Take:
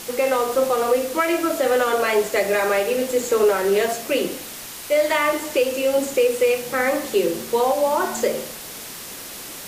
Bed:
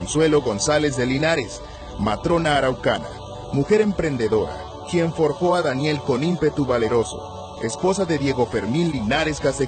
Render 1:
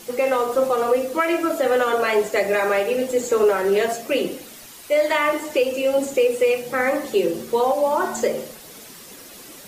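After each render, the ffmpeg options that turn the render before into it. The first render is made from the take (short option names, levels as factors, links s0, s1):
-af "afftdn=nr=9:nf=-36"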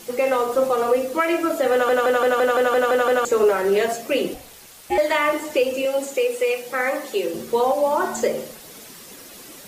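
-filter_complex "[0:a]asettb=1/sr,asplit=3[s0][s1][s2];[s0]atrim=end=4.344[s3];[s1]atrim=start=4.34:end=4.98,asetpts=PTS-STARTPTS,afade=t=in:d=0.004:c=qsin,afade=t=out:st=0.636:d=0.004:c=qsin,aeval=exprs='val(0)*sin(2*PI*230*n/s)':c=same[s4];[s2]atrim=start=4.976[s5];[s3][s4]acrossfade=d=0.004:c1=hsin:c2=qsin[s6];[s6][s5]acrossfade=d=0.004:c1=qsin:c2=hsin,asettb=1/sr,asplit=3[s7][s8][s9];[s7]atrim=end=5.854[s10];[s8]atrim=start=5.85:end=7.34,asetpts=PTS-STARTPTS,afade=t=in:d=0.004:c=qsin,afade=t=out:st=1.486:d=0.004:c=qsin,highpass=f=510:p=1[s11];[s9]atrim=start=7.336[s12];[s10][s11]acrossfade=d=0.004:c1=hsin:c2=qsin[s13];[s13][s12]acrossfade=d=0.004:c1=qsin:c2=hsin,asplit=10[s14][s15][s16][s17][s18][s19][s20][s21][s22][s23];[s14]atrim=end=1.892[s24];[s15]atrim=start=1.718:end=1.892[s25];[s16]atrim=start=1.718:end=1.892[s26];[s17]atrim=start=1.718:end=1.892[s27];[s18]atrim=start=1.718:end=1.892[s28];[s19]atrim=start=1.718:end=1.892[s29];[s20]atrim=start=1.718:end=1.892[s30];[s21]atrim=start=1.718:end=1.892[s31];[s22]atrim=start=1.718:end=1.892[s32];[s23]atrim=start=3.248[s33];[s24][s25]acrossfade=d=0.004:c1=hsin:c2=hsin[s34];[s34][s26]acrossfade=d=0.004:c1=hsin:c2=hsin[s35];[s35][s27]acrossfade=d=0.004:c1=hsin:c2=hsin[s36];[s36][s28]acrossfade=d=0.004:c1=hsin:c2=hsin[s37];[s37][s29]acrossfade=d=0.004:c1=hsin:c2=hsin[s38];[s38][s30]acrossfade=d=0.004:c1=hsin:c2=hsin[s39];[s39][s31]acrossfade=d=0.004:c1=hsin:c2=hsin[s40];[s40][s32]acrossfade=d=0.004:c1=hsin:c2=hsin[s41];[s41][s33]acrossfade=d=0.004:c1=hsin:c2=hsin"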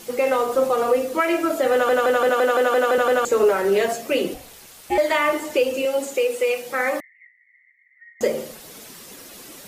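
-filter_complex "[0:a]asettb=1/sr,asplit=3[s0][s1][s2];[s0]atrim=end=2.294[s3];[s1]atrim=start=2.29:end=2.98,asetpts=PTS-STARTPTS,afade=t=in:d=0.004:c=qsin,afade=t=out:st=0.686:d=0.004:c=qsin,highpass=f=200:w=0.5412,highpass=f=200:w=1.3066[s4];[s2]atrim=start=2.976[s5];[s3][s4]acrossfade=d=0.004:c1=hsin:c2=qsin[s6];[s6][s5]acrossfade=d=0.004:c1=qsin:c2=hsin,asettb=1/sr,asplit=3[s7][s8][s9];[s7]atrim=end=7.004[s10];[s8]atrim=start=7:end=8.21,asetpts=PTS-STARTPTS,afade=t=in:d=0.004:c=qsin,afade=t=out:st=1.206:d=0.004:c=qsin,asuperpass=centerf=2000:order=8:qfactor=6.3[s11];[s9]atrim=start=8.206[s12];[s10][s11]acrossfade=d=0.004:c1=hsin:c2=qsin[s13];[s13][s12]acrossfade=d=0.004:c1=qsin:c2=hsin"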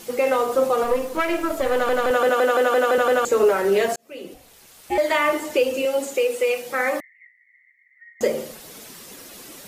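-filter_complex "[0:a]asettb=1/sr,asplit=3[s0][s1][s2];[s0]atrim=end=0.844[s3];[s1]atrim=start=0.84:end=2.11,asetpts=PTS-STARTPTS,afade=t=in:d=0.004:c=qsin,afade=t=out:st=1.266:d=0.004:c=qsin,aeval=exprs='if(lt(val(0),0),0.447*val(0),val(0))':c=same[s4];[s2]atrim=start=2.106[s5];[s3][s4]acrossfade=d=0.004:c1=hsin:c2=qsin[s6];[s6][s5]acrossfade=d=0.004:c1=qsin:c2=hsin,asplit=2[s7][s8];[s7]atrim=end=3.96,asetpts=PTS-STARTPTS,afade=t=out:st=3.956:d=0.004:c=hsin[s9];[s8]atrim=start=3.96,asetpts=PTS-STARTPTS,afade=t=in:d=1.2[s10];[s9][s10]concat=n=2:v=0:a=1"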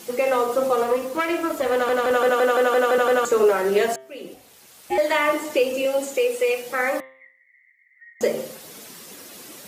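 -af "highpass=98,bandreject=f=131.7:t=h:w=4,bandreject=f=263.4:t=h:w=4,bandreject=f=395.1:t=h:w=4,bandreject=f=526.8:t=h:w=4,bandreject=f=658.5:t=h:w=4,bandreject=f=790.2:t=h:w=4,bandreject=f=921.9:t=h:w=4,bandreject=f=1053.6:t=h:w=4,bandreject=f=1185.3:t=h:w=4,bandreject=f=1317:t=h:w=4,bandreject=f=1448.7:t=h:w=4,bandreject=f=1580.4:t=h:w=4,bandreject=f=1712.1:t=h:w=4,bandreject=f=1843.8:t=h:w=4,bandreject=f=1975.5:t=h:w=4,bandreject=f=2107.2:t=h:w=4,bandreject=f=2238.9:t=h:w=4,bandreject=f=2370.6:t=h:w=4,bandreject=f=2502.3:t=h:w=4,bandreject=f=2634:t=h:w=4,bandreject=f=2765.7:t=h:w=4,bandreject=f=2897.4:t=h:w=4,bandreject=f=3029.1:t=h:w=4,bandreject=f=3160.8:t=h:w=4,bandreject=f=3292.5:t=h:w=4,bandreject=f=3424.2:t=h:w=4,bandreject=f=3555.9:t=h:w=4,bandreject=f=3687.6:t=h:w=4,bandreject=f=3819.3:t=h:w=4,bandreject=f=3951:t=h:w=4"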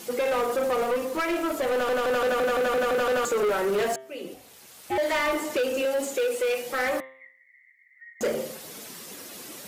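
-af "asoftclip=type=tanh:threshold=0.0891"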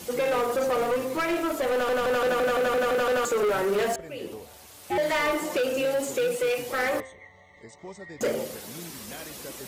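-filter_complex "[1:a]volume=0.075[s0];[0:a][s0]amix=inputs=2:normalize=0"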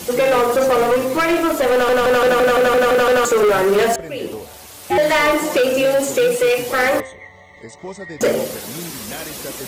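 -af "volume=3.16"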